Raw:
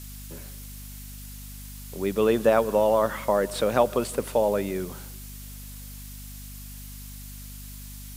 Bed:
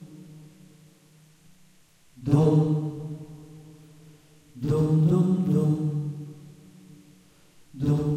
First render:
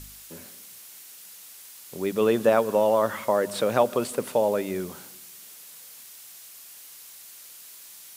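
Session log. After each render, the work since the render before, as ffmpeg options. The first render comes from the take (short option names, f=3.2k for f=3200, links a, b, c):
-af "bandreject=f=50:t=h:w=4,bandreject=f=100:t=h:w=4,bandreject=f=150:t=h:w=4,bandreject=f=200:t=h:w=4,bandreject=f=250:t=h:w=4"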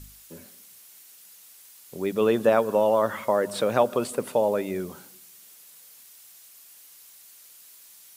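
-af "afftdn=nr=6:nf=-46"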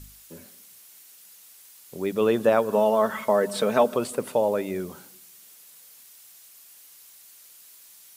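-filter_complex "[0:a]asettb=1/sr,asplit=3[a][b][c];[a]atrim=end=2.724[d];[b]atrim=start=2.72:end=3.96,asetpts=PTS-STARTPTS,afade=t=in:d=0.004:c=qsin,afade=t=out:st=1.236:d=0.004:c=qsin,aecho=1:1:4.6:0.65,atrim=end_sample=54684[e];[c]atrim=start=3.956[f];[d][e]acrossfade=d=0.004:c1=hsin:c2=qsin[g];[g][f]acrossfade=d=0.004:c1=qsin:c2=hsin"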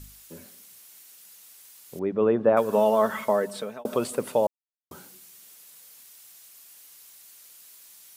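-filter_complex "[0:a]asettb=1/sr,asplit=3[a][b][c];[a]atrim=end=1.994[d];[b]atrim=start=1.99:end=2.57,asetpts=PTS-STARTPTS,afade=t=in:d=0.004:c=qsin,afade=t=out:st=0.576:d=0.004:c=qsin,lowpass=1.4k[e];[c]atrim=start=2.566[f];[d][e]acrossfade=d=0.004:c1=hsin:c2=qsin[g];[g][f]acrossfade=d=0.004:c1=qsin:c2=hsin,asplit=4[h][i][j][k];[h]atrim=end=3.85,asetpts=PTS-STARTPTS,afade=t=out:st=3.21:d=0.64[l];[i]atrim=start=3.85:end=4.47,asetpts=PTS-STARTPTS,afade=t=in:d=0.004:c=hsin,afade=t=out:st=0.616:d=0.004:c=hsin[m];[j]atrim=start=4.47:end=4.91,asetpts=PTS-STARTPTS,volume=0[n];[k]atrim=start=4.91,asetpts=PTS-STARTPTS,afade=t=in:d=0.004:c=hsin[o];[l][m][n][o]concat=n=4:v=0:a=1"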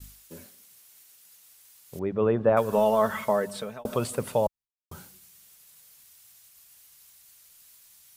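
-af "asubboost=boost=7.5:cutoff=110,agate=range=-33dB:threshold=-45dB:ratio=3:detection=peak"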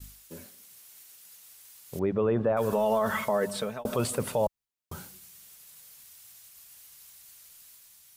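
-af "alimiter=limit=-20dB:level=0:latency=1:release=22,dynaudnorm=f=110:g=11:m=3dB"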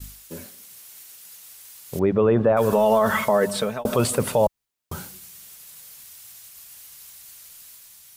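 -af "volume=7.5dB"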